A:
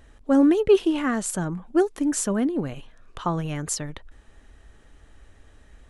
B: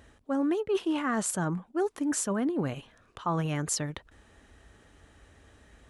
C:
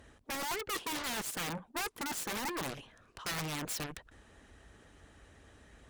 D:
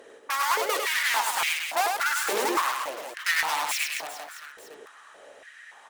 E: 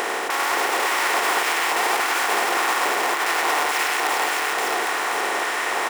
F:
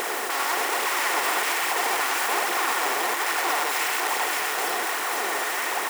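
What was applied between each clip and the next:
high-pass 69 Hz 12 dB/octave; dynamic bell 1.1 kHz, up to +6 dB, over -37 dBFS, Q 1; reverse; compression 6:1, threshold -26 dBFS, peak gain reduction 14.5 dB; reverse
integer overflow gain 24.5 dB; Chebyshev shaper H 7 -6 dB, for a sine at -24.5 dBFS; harmonic-percussive split harmonic -4 dB; trim -7 dB
reverse bouncing-ball echo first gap 100 ms, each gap 1.3×, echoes 5; step-sequenced high-pass 3.5 Hz 440–2300 Hz; trim +6.5 dB
spectral levelling over time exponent 0.2; peak limiter -8.5 dBFS, peak gain reduction 7 dB; delay 528 ms -4.5 dB; trim -4 dB
zero-crossing glitches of -22 dBFS; flange 1.2 Hz, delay 0.2 ms, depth 7.9 ms, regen +42%

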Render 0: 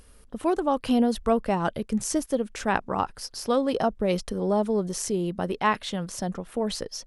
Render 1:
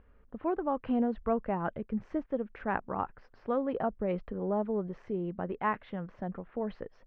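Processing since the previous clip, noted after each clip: low-pass 2.1 kHz 24 dB/octave; trim -7 dB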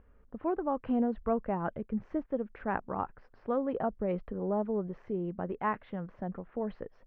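treble shelf 2.8 kHz -8.5 dB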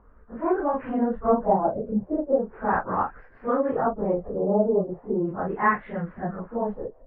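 phase randomisation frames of 100 ms; LFO low-pass sine 0.38 Hz 600–2000 Hz; trim +6.5 dB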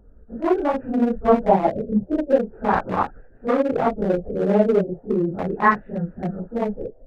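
local Wiener filter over 41 samples; trim +5.5 dB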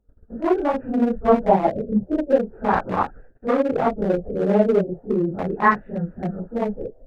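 gate -45 dBFS, range -18 dB

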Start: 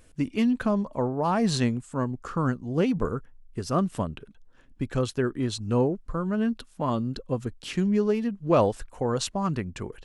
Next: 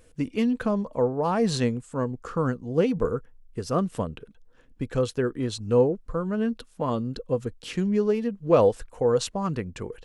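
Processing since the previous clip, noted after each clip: peaking EQ 480 Hz +10 dB 0.21 oct; trim -1 dB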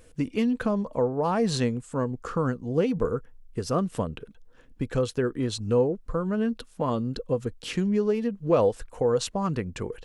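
compression 1.5:1, threshold -29 dBFS, peak gain reduction 6 dB; trim +2.5 dB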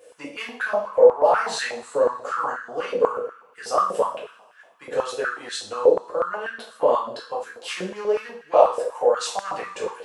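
two-slope reverb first 0.46 s, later 2 s, from -22 dB, DRR -5.5 dB; step-sequenced high-pass 8.2 Hz 510–1600 Hz; trim -3.5 dB

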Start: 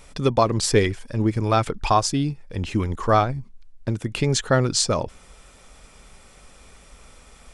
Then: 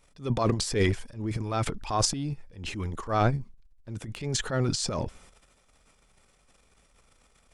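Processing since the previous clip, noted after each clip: transient shaper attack -6 dB, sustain +12 dB; upward expansion 1.5:1, over -34 dBFS; trim -6 dB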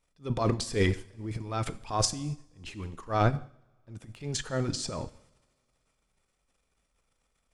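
two-slope reverb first 0.94 s, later 3 s, from -19 dB, DRR 11.5 dB; upward expansion 1.5:1, over -46 dBFS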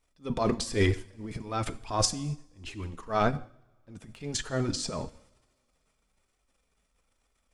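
flange 1.1 Hz, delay 2.6 ms, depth 2.3 ms, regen -47%; trim +5 dB

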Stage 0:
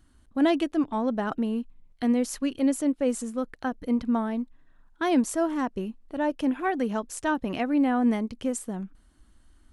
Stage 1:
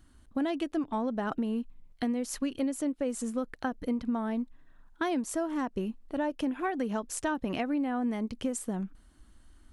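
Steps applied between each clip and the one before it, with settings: compression 10:1, threshold -28 dBFS, peak gain reduction 11 dB; trim +1 dB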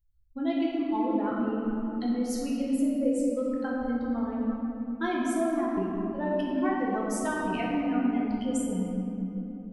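expander on every frequency bin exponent 2; simulated room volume 180 m³, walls hard, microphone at 0.83 m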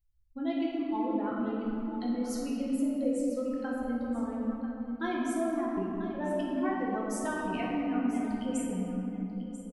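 delay 990 ms -13.5 dB; trim -3.5 dB

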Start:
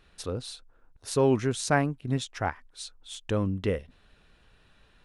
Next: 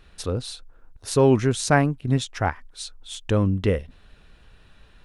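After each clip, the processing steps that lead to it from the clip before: bass shelf 110 Hz +6 dB; trim +5 dB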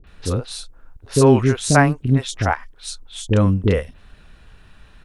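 three bands offset in time lows, mids, highs 40/70 ms, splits 470/3700 Hz; trim +5.5 dB

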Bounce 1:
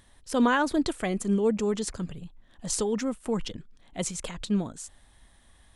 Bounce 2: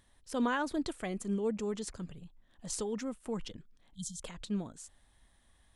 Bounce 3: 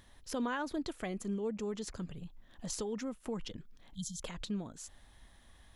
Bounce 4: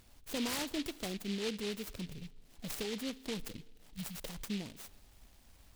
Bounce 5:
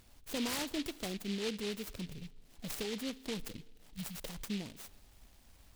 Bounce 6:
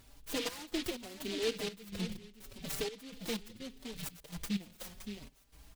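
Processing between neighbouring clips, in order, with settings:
spectral selection erased 3.94–4.21 s, 230–3100 Hz; trim -8.5 dB
peaking EQ 8.6 kHz -10 dB 0.23 oct; compression 2:1, threshold -49 dBFS, peak gain reduction 12 dB; trim +7 dB
on a send at -19 dB: reverberation RT60 1.7 s, pre-delay 4 ms; on the sum: delay time shaken by noise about 3.1 kHz, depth 0.2 ms; trim -1 dB
no audible change
delay 568 ms -8.5 dB; trance gate "xxxx..xx.." 125 bpm -12 dB; endless flanger 4.7 ms +0.75 Hz; trim +5.5 dB

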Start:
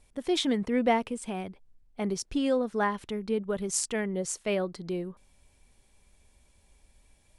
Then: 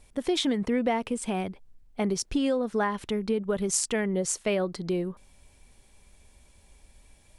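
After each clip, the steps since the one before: compression 6:1, threshold -28 dBFS, peak gain reduction 9 dB; trim +5.5 dB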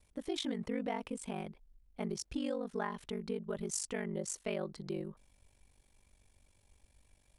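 ring modulator 24 Hz; trim -8 dB

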